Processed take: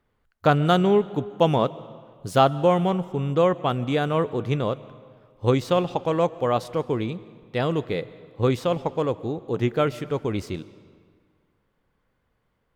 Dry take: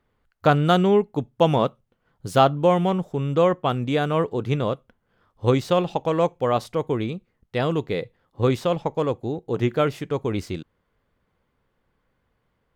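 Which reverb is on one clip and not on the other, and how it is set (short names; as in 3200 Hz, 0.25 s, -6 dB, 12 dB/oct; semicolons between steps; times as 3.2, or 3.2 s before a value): digital reverb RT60 1.9 s, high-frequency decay 0.8×, pre-delay 90 ms, DRR 18 dB; gain -1 dB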